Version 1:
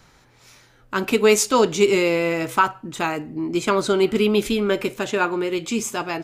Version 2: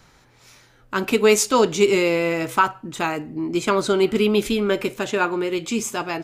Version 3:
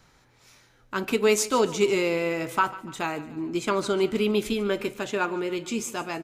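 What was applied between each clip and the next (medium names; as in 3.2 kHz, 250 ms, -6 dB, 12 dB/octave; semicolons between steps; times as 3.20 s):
no audible change
feedback delay 146 ms, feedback 48%, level -17 dB; trim -5.5 dB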